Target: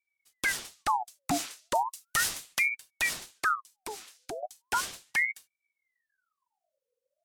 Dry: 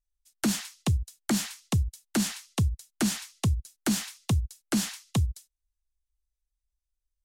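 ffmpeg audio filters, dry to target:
-filter_complex "[0:a]asettb=1/sr,asplit=3[a][b][c];[a]atrim=end=1.754[d];[b]atrim=start=1.75:end=2.7,asetpts=PTS-STARTPTS,afade=t=in:d=0.004:c=qsin,afade=t=out:st=0.946:d=0.004:c=qsin,highshelf=f=4.4k:g=8.5[e];[c]atrim=start=2.696[f];[d][e]acrossfade=d=0.004:c1=hsin:c2=qsin[g];[g][f]acrossfade=d=0.004:c1=qsin:c2=hsin,asettb=1/sr,asplit=3[h][i][j];[h]atrim=end=3.554[k];[i]atrim=start=3.55:end=4.43,asetpts=PTS-STARTPTS,afade=t=in:d=0.004:c=qsin,afade=t=out:st=0.876:d=0.004:c=qsin,acompressor=threshold=-43dB:ratio=2[l];[j]atrim=start=4.426[m];[k][l]acrossfade=d=0.004:c1=hsin:c2=qsin[n];[n][m]acrossfade=d=0.004:c1=qsin:c2=hsin,aeval=exprs='val(0)*sin(2*PI*1400*n/s+1400*0.65/0.36*sin(2*PI*0.36*n/s))':c=same"

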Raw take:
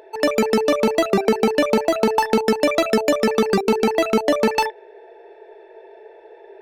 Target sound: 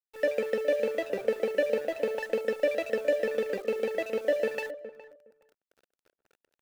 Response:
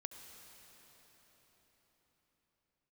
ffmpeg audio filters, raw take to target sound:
-filter_complex "[0:a]asplit=3[a][b][c];[a]bandpass=f=530:t=q:w=8,volume=0dB[d];[b]bandpass=f=1.84k:t=q:w=8,volume=-6dB[e];[c]bandpass=f=2.48k:t=q:w=8,volume=-9dB[f];[d][e][f]amix=inputs=3:normalize=0,lowshelf=f=150:g=4.5,bandreject=f=370:w=12,acrusher=bits=8:mix=0:aa=0.000001,aeval=exprs='sgn(val(0))*max(abs(val(0))-0.00631,0)':c=same,asplit=2[g][h];[h]adelay=414,lowpass=f=1.1k:p=1,volume=-13dB,asplit=2[i][j];[j]adelay=414,lowpass=f=1.1k:p=1,volume=0.17[k];[g][i][k]amix=inputs=3:normalize=0"

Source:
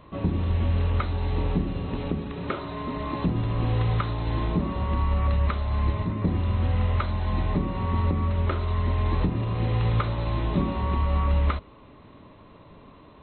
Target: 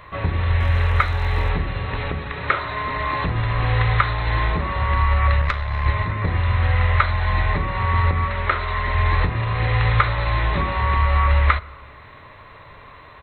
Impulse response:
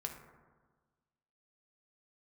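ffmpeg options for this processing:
-filter_complex "[0:a]asettb=1/sr,asplit=3[a][b][c];[a]atrim=end=0.604[d];[b]atrim=start=0.6:end=1.5,asetpts=PTS-STARTPTS,afade=t=in:d=0.004:c=qsin,afade=t=out:st=0.896:d=0.004:c=qsin,aeval=exprs='sgn(val(0))*max(abs(val(0))-0.00211,0)':c=same[e];[c]atrim=start=1.496[f];[d][e]acrossfade=d=0.004:c1=hsin:c2=qsin[g];[g][f]acrossfade=d=0.004:c1=qsin:c2=hsin,firequalizer=gain_entry='entry(110,0);entry(180,-11);entry(270,-12);entry(470,-2);entry(1900,13);entry(2900,2);entry(5500,7)':delay=0.05:min_phase=1,asettb=1/sr,asplit=3[h][i][j];[h]atrim=end=5.414[k];[i]atrim=start=5.41:end=5.86,asetpts=PTS-STARTPTS,afade=t=in:d=0.004:c=qsin,afade=t=out:st=0.446:d=0.004:c=qsin,aeval=exprs='(tanh(5.01*val(0)+0.75)-tanh(0.75))/5.01':c=same[l];[j]atrim=start=5.856[m];[k][l]acrossfade=d=0.004:c1=hsin:c2=qsin[n];[n][m]acrossfade=d=0.004:c1=qsin:c2=hsin,asettb=1/sr,asplit=3[o][p][q];[o]atrim=end=8.244[r];[p]atrim=start=8.24:end=8.95,asetpts=PTS-STARTPTS,afade=t=in:d=0.004:c=qsin,afade=t=out:st=0.706:d=0.004:c=qsin,equalizer=f=85:w=1.5:g=-9[s];[q]atrim=start=8.946[t];[r][s]acrossfade=d=0.004:c1=hsin:c2=qsin[u];[u][t]acrossfade=d=0.004:c1=qsin:c2=hsin,asplit=2[v][w];[1:a]atrim=start_sample=2205[x];[w][x]afir=irnorm=-1:irlink=0,volume=-13dB[y];[v][y]amix=inputs=2:normalize=0,volume=4.5dB"

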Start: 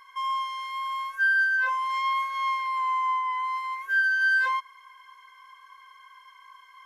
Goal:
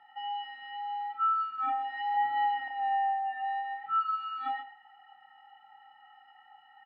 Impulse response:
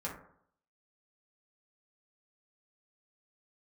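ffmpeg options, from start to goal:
-filter_complex "[0:a]asettb=1/sr,asplit=3[a][b][c];[a]atrim=end=2.144[d];[b]atrim=start=2.14:end=2.68,asetpts=PTS-STARTPTS,afade=t=in:d=0.004:c=qsin,afade=t=out:st=0.536:d=0.004:c=qsin,equalizer=f=250:w=0.44:g=13[e];[c]atrim=start=2.676[f];[d][e]acrossfade=d=0.004:c1=hsin:c2=qsin[g];[g][f]acrossfade=d=0.004:c1=qsin:c2=hsin,asplit=2[h][i];[i]adelay=26,volume=-3dB[j];[h][j]amix=inputs=2:normalize=0,aecho=1:1:129:0.178,highpass=f=340:t=q:w=0.5412,highpass=f=340:t=q:w=1.307,lowpass=f=3.6k:t=q:w=0.5176,lowpass=f=3.6k:t=q:w=0.7071,lowpass=f=3.6k:t=q:w=1.932,afreqshift=-250,volume=-7.5dB"

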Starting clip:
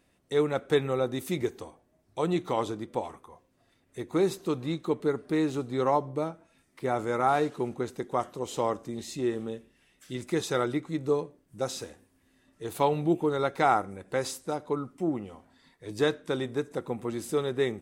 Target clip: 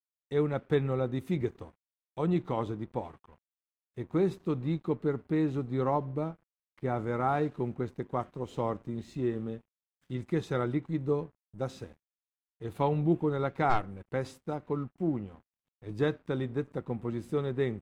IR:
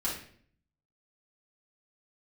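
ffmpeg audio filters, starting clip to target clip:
-filter_complex "[0:a]asplit=3[a][b][c];[a]afade=t=out:st=13.69:d=0.02[d];[b]aeval=exprs='0.299*(cos(1*acos(clip(val(0)/0.299,-1,1)))-cos(1*PI/2))+0.0376*(cos(8*acos(clip(val(0)/0.299,-1,1)))-cos(8*PI/2))':c=same,afade=t=in:st=13.69:d=0.02,afade=t=out:st=14.09:d=0.02[e];[c]afade=t=in:st=14.09:d=0.02[f];[d][e][f]amix=inputs=3:normalize=0,aeval=exprs='sgn(val(0))*max(abs(val(0))-0.00224,0)':c=same,bass=f=250:g=10,treble=f=4k:g=-13,volume=-4.5dB"

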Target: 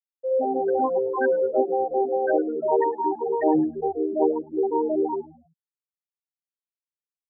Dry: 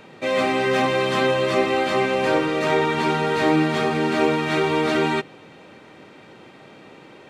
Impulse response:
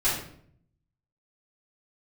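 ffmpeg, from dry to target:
-filter_complex "[0:a]highpass=f=140:w=0.5412,highpass=f=140:w=1.3066,bandreject=f=60:t=h:w=6,bandreject=f=120:t=h:w=6,bandreject=f=180:t=h:w=6,bandreject=f=240:t=h:w=6,bandreject=f=300:t=h:w=6,bandreject=f=360:t=h:w=6,bandreject=f=420:t=h:w=6,bandreject=f=480:t=h:w=6,bandreject=f=540:t=h:w=6,bandreject=f=600:t=h:w=6,afftfilt=real='re*gte(hypot(re,im),0.447)':imag='im*gte(hypot(re,im),0.447)':win_size=1024:overlap=0.75,bass=f=250:g=-8,treble=f=4k:g=11,asplit=2[a][b];[b]asplit=3[c][d][e];[c]adelay=107,afreqshift=-76,volume=-20dB[f];[d]adelay=214,afreqshift=-152,volume=-28.4dB[g];[e]adelay=321,afreqshift=-228,volume=-36.8dB[h];[f][g][h]amix=inputs=3:normalize=0[i];[a][i]amix=inputs=2:normalize=0,volume=2dB"

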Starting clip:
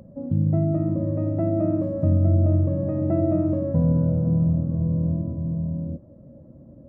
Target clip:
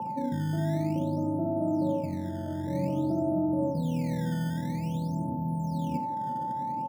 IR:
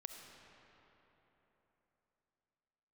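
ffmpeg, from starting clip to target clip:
-filter_complex "[0:a]aeval=exprs='val(0)+0.0282*sin(2*PI*880*n/s)':c=same,lowpass=f=1.2k:w=0.5412,lowpass=f=1.2k:w=1.3066,tiltshelf=f=780:g=6,alimiter=limit=-12dB:level=0:latency=1:release=30,areverse,acompressor=threshold=-27dB:ratio=6,areverse,highpass=f=130:w=0.5412,highpass=f=130:w=1.3066,acrossover=split=190[a][b];[a]acrusher=samples=15:mix=1:aa=0.000001:lfo=1:lforange=24:lforate=0.51[c];[b]aecho=1:1:45|65:0.316|0.562[d];[c][d]amix=inputs=2:normalize=0[e];[1:a]atrim=start_sample=2205,atrim=end_sample=4410[f];[e][f]afir=irnorm=-1:irlink=0,volume=6.5dB"

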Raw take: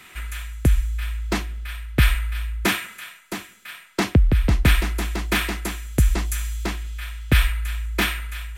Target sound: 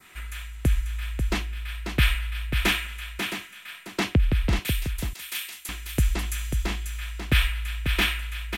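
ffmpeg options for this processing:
-filter_complex "[0:a]asettb=1/sr,asplit=3[a][b][c];[a]atrim=end=4.594[d];[b]atrim=start=4.59:end=5.69,asetpts=PTS-STARTPTS,afade=t=in:d=0.004:c=qsin,afade=t=out:st=1.096:d=0.004:c=qsin,aderivative[e];[c]atrim=start=5.686[f];[d][e]acrossfade=d=0.004:c1=hsin:c2=qsin[g];[g][f]acrossfade=d=0.004:c1=qsin:c2=hsin,aecho=1:1:541:0.473,adynamicequalizer=threshold=0.00891:dfrequency=2900:dqfactor=1.5:tfrequency=2900:tqfactor=1.5:attack=5:release=100:ratio=0.375:range=3.5:mode=boostabove:tftype=bell,volume=-5dB"

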